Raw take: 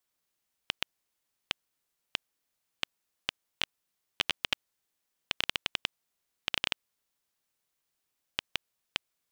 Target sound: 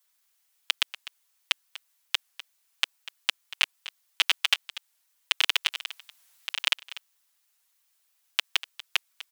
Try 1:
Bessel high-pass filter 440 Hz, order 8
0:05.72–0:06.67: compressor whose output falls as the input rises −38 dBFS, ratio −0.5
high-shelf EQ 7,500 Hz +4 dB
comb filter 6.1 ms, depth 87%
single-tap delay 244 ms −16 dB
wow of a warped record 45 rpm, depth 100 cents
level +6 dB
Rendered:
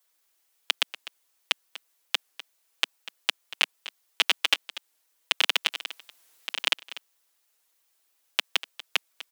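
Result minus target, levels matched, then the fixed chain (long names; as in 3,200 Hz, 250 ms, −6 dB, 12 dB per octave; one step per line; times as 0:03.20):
500 Hz band +8.0 dB
Bessel high-pass filter 1,000 Hz, order 8
0:05.72–0:06.67: compressor whose output falls as the input rises −38 dBFS, ratio −0.5
high-shelf EQ 7,500 Hz +4 dB
comb filter 6.1 ms, depth 87%
single-tap delay 244 ms −16 dB
wow of a warped record 45 rpm, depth 100 cents
level +6 dB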